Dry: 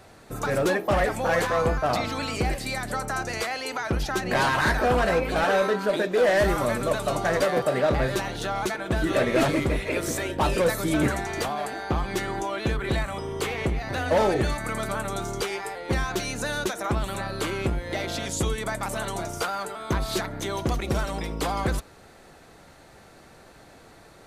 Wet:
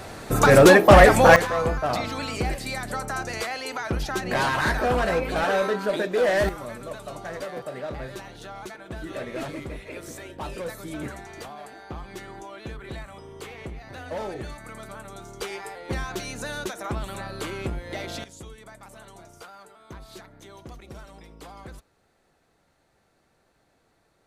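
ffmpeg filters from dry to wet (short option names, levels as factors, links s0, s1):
-af "asetnsamples=n=441:p=0,asendcmd='1.36 volume volume -1dB;6.49 volume volume -11dB;15.41 volume volume -4dB;18.24 volume volume -16.5dB',volume=3.76"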